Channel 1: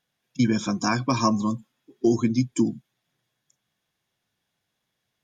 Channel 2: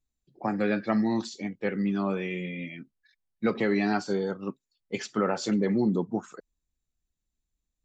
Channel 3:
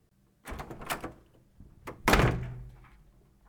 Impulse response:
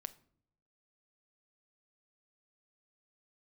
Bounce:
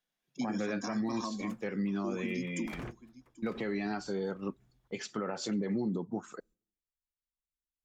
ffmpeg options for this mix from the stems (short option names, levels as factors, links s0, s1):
-filter_complex "[0:a]highpass=f=170:w=0.5412,highpass=f=170:w=1.3066,volume=0.335,asplit=2[s0][s1];[s1]volume=0.075[s2];[1:a]agate=range=0.112:threshold=0.00112:ratio=16:detection=peak,volume=0.891,asplit=3[s3][s4][s5];[s4]volume=0.1[s6];[2:a]acompressor=threshold=0.0251:ratio=2.5,adelay=600,volume=0.447,afade=t=in:st=2.55:d=0.53:silence=0.223872,asplit=3[s7][s8][s9];[s8]volume=0.106[s10];[s9]volume=0.447[s11];[s5]apad=whole_len=180364[s12];[s7][s12]sidechaingate=range=0.0224:threshold=0.00251:ratio=16:detection=peak[s13];[3:a]atrim=start_sample=2205[s14];[s6][s10]amix=inputs=2:normalize=0[s15];[s15][s14]afir=irnorm=-1:irlink=0[s16];[s2][s11]amix=inputs=2:normalize=0,aecho=0:1:787|1574|2361:1|0.19|0.0361[s17];[s0][s3][s13][s16][s17]amix=inputs=5:normalize=0,alimiter=level_in=1.19:limit=0.0631:level=0:latency=1:release=189,volume=0.841"